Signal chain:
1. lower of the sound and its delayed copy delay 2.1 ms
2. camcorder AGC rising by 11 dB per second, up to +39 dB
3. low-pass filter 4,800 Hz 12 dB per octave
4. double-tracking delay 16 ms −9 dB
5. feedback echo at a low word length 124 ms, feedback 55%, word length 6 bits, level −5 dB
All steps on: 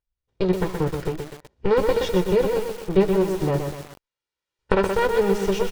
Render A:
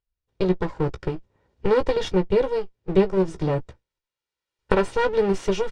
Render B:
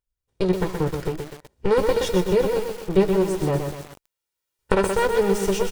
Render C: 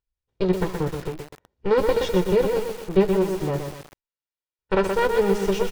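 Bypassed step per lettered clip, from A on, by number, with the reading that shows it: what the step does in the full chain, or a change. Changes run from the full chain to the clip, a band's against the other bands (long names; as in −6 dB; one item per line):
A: 5, change in momentary loudness spread −2 LU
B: 3, 8 kHz band +5.0 dB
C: 2, change in crest factor −5.0 dB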